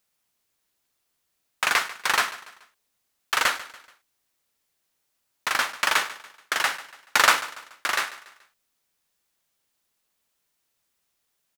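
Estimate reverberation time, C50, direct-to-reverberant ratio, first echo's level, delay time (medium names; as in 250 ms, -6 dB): no reverb, no reverb, no reverb, -17.0 dB, 143 ms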